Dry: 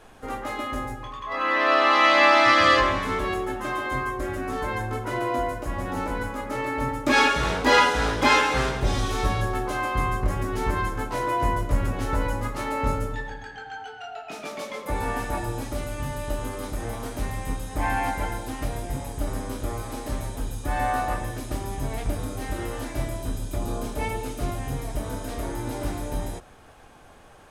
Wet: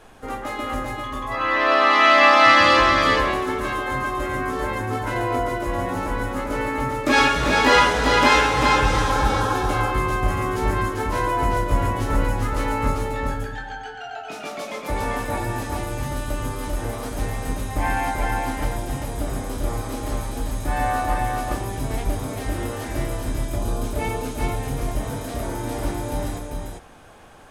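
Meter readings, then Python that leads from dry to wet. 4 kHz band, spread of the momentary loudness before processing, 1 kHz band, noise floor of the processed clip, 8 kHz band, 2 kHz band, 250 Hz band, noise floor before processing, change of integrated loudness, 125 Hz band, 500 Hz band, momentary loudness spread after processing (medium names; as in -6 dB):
+3.5 dB, 14 LU, +4.0 dB, -35 dBFS, +3.5 dB, +3.5 dB, +3.5 dB, -44 dBFS, +3.5 dB, +3.5 dB, +3.5 dB, 14 LU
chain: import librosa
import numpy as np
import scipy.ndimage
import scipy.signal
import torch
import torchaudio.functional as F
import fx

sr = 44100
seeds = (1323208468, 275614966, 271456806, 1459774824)

y = fx.spec_repair(x, sr, seeds[0], start_s=8.55, length_s=0.97, low_hz=240.0, high_hz=1700.0, source='before')
y = y + 10.0 ** (-3.5 / 20.0) * np.pad(y, (int(394 * sr / 1000.0), 0))[:len(y)]
y = y * 10.0 ** (2.0 / 20.0)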